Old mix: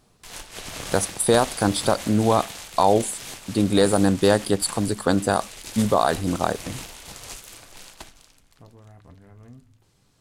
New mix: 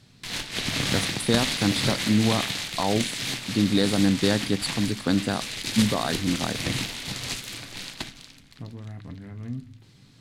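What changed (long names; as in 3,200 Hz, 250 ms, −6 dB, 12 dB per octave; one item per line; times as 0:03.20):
speech −12.0 dB
master: add octave-band graphic EQ 125/250/2,000/4,000 Hz +11/+11/+8/+10 dB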